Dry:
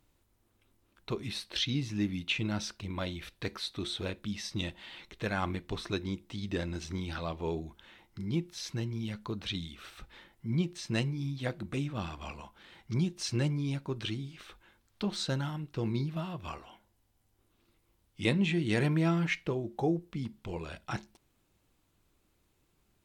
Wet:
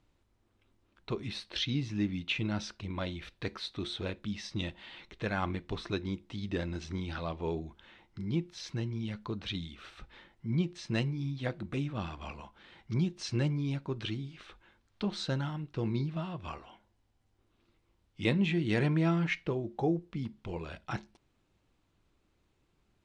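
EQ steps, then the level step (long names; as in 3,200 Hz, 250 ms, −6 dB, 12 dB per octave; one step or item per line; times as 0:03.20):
high-frequency loss of the air 83 metres
0.0 dB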